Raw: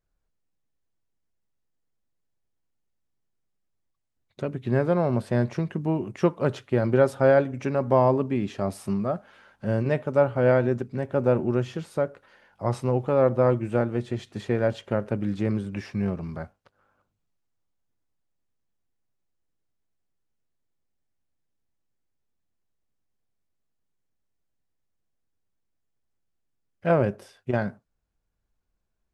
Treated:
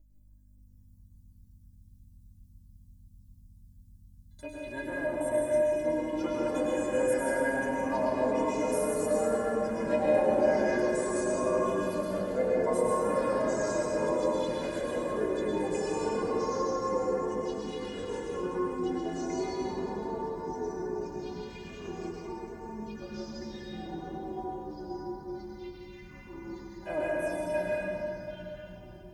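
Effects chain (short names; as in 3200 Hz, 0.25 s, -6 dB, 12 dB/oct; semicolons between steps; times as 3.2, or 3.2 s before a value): RIAA curve recording; hum 50 Hz, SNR 14 dB; envelope phaser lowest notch 210 Hz, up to 4600 Hz, full sweep at -29.5 dBFS; metallic resonator 300 Hz, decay 0.25 s, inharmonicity 0.008; echoes that change speed 0.573 s, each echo -3 st, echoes 3; Butterworth band-stop 1300 Hz, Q 7.4; reverb RT60 3.1 s, pre-delay 97 ms, DRR -5 dB; gain +6.5 dB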